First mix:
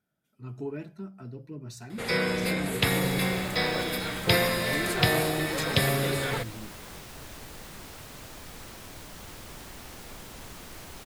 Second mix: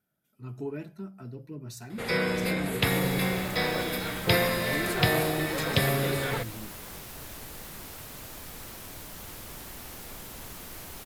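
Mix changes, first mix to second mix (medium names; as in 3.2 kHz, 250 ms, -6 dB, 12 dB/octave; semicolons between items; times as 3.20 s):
first sound: add treble shelf 5.9 kHz -9 dB; master: add peaking EQ 13 kHz +9 dB 0.65 oct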